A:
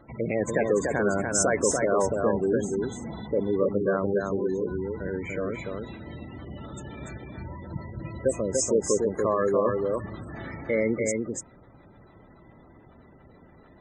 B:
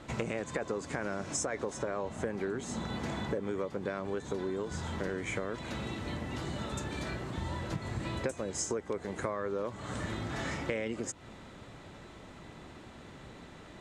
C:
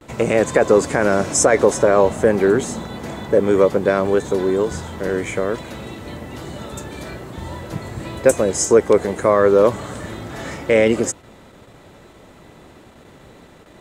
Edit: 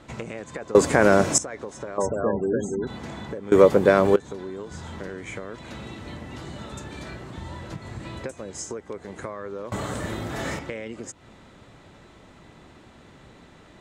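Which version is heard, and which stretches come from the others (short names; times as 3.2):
B
0.75–1.38 from C
1.98–2.87 from A
3.52–4.16 from C
9.72–10.59 from C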